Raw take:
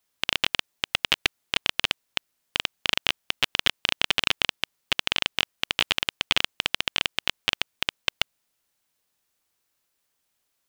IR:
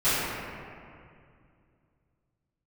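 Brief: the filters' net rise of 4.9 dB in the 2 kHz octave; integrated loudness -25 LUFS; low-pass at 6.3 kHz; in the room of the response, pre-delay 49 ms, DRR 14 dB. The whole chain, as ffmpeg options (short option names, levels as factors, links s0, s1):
-filter_complex "[0:a]lowpass=6300,equalizer=f=2000:t=o:g=6.5,asplit=2[s0][s1];[1:a]atrim=start_sample=2205,adelay=49[s2];[s1][s2]afir=irnorm=-1:irlink=0,volume=0.0299[s3];[s0][s3]amix=inputs=2:normalize=0,volume=0.75"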